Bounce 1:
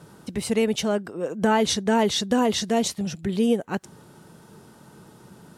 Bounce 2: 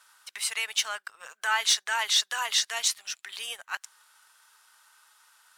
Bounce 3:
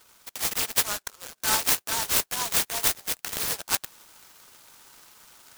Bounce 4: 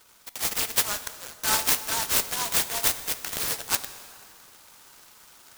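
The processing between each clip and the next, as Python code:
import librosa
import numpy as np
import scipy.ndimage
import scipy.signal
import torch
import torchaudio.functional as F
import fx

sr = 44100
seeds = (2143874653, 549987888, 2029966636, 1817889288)

y1 = scipy.signal.sosfilt(scipy.signal.butter(4, 1200.0, 'highpass', fs=sr, output='sos'), x)
y1 = fx.leveller(y1, sr, passes=1)
y2 = fx.rider(y1, sr, range_db=5, speed_s=0.5)
y2 = fx.noise_mod_delay(y2, sr, seeds[0], noise_hz=5700.0, depth_ms=0.16)
y2 = y2 * librosa.db_to_amplitude(3.5)
y3 = fx.rev_plate(y2, sr, seeds[1], rt60_s=2.4, hf_ratio=0.75, predelay_ms=0, drr_db=11.0)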